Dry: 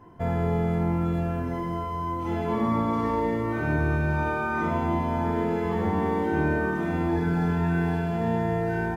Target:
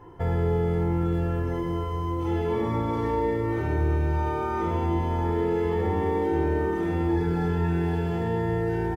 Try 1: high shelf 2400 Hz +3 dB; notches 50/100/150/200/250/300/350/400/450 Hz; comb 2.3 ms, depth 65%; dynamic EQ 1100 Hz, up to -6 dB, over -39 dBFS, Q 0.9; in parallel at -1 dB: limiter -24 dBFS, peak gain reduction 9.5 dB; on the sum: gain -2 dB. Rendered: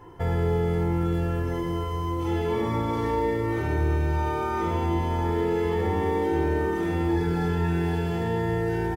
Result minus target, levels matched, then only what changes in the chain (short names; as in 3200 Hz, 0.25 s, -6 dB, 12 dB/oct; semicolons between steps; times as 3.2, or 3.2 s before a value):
4000 Hz band +4.5 dB
change: high shelf 2400 Hz -4.5 dB